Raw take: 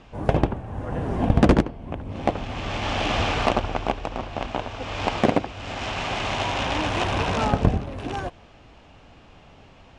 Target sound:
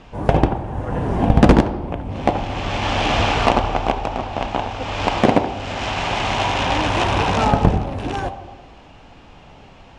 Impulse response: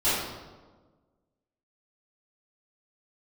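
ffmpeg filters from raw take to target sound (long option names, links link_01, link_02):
-filter_complex "[0:a]asplit=2[link_01][link_02];[link_02]equalizer=frequency=850:width_type=o:width=0.69:gain=9.5[link_03];[1:a]atrim=start_sample=2205[link_04];[link_03][link_04]afir=irnorm=-1:irlink=0,volume=-26dB[link_05];[link_01][link_05]amix=inputs=2:normalize=0,volume=4.5dB"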